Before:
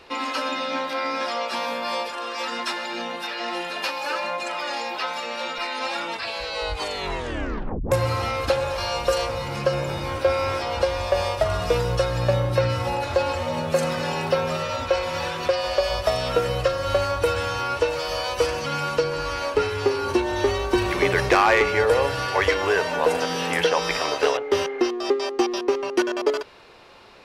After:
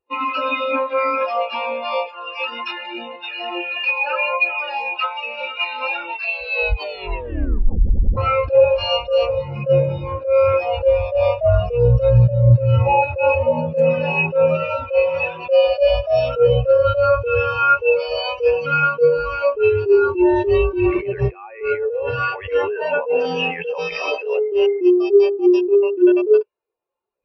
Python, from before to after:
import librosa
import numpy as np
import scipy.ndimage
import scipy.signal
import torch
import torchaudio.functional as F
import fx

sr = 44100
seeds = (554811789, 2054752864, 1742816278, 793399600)

y = fx.edit(x, sr, fx.stutter_over(start_s=7.81, slice_s=0.09, count=4), tone=tone)
y = fx.dynamic_eq(y, sr, hz=2600.0, q=4.2, threshold_db=-47.0, ratio=4.0, max_db=8)
y = fx.over_compress(y, sr, threshold_db=-24.0, ratio=-1.0)
y = fx.spectral_expand(y, sr, expansion=2.5)
y = y * librosa.db_to_amplitude(6.5)